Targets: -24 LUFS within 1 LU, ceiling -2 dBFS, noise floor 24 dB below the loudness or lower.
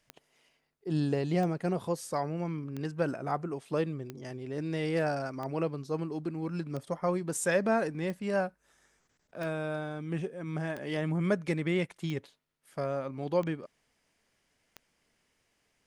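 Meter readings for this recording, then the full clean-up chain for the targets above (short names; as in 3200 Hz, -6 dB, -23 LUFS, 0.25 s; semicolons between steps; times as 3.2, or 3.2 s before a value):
clicks 12; loudness -33.0 LUFS; peak -15.5 dBFS; loudness target -24.0 LUFS
-> de-click; gain +9 dB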